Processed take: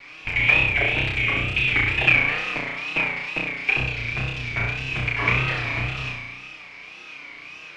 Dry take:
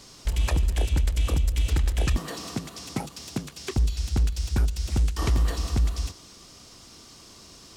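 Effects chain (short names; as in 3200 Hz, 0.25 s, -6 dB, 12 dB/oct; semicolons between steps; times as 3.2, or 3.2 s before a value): minimum comb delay 6.7 ms; synth low-pass 2400 Hz, resonance Q 14; low shelf 280 Hz -11.5 dB; flutter echo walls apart 5.6 m, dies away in 0.92 s; wow and flutter 110 cents; gain +3 dB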